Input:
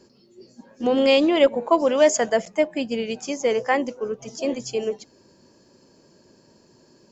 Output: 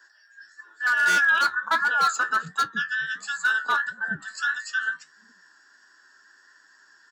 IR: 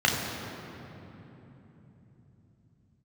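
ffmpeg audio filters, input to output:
-filter_complex "[0:a]afftfilt=real='real(if(between(b,1,1012),(2*floor((b-1)/92)+1)*92-b,b),0)':imag='imag(if(between(b,1,1012),(2*floor((b-1)/92)+1)*92-b,b),0)*if(between(b,1,1012),-1,1)':win_size=2048:overlap=0.75,equalizer=f=360:w=2.5:g=-2.5,acrossover=split=300[a][b];[a]adelay=420[c];[c][b]amix=inputs=2:normalize=0,aeval=exprs='0.224*(abs(mod(val(0)/0.224+3,4)-2)-1)':c=same,flanger=delay=9.7:depth=4.6:regen=57:speed=1.5:shape=sinusoidal,highpass=f=190:w=0.5412,highpass=f=190:w=1.3066,adynamicequalizer=threshold=0.0112:dfrequency=2700:dqfactor=0.7:tfrequency=2700:tqfactor=0.7:attack=5:release=100:ratio=0.375:range=4:mode=cutabove:tftype=highshelf,volume=3dB"

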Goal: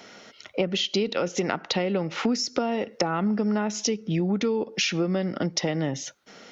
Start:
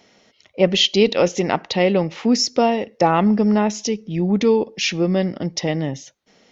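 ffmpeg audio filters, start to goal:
-filter_complex "[0:a]lowshelf=f=82:g=-11.5,acrossover=split=360[a][b];[b]acompressor=threshold=-20dB:ratio=6[c];[a][c]amix=inputs=2:normalize=0,equalizer=f=1.4k:t=o:w=0.28:g=10,acompressor=threshold=-30dB:ratio=6,volume=7dB"

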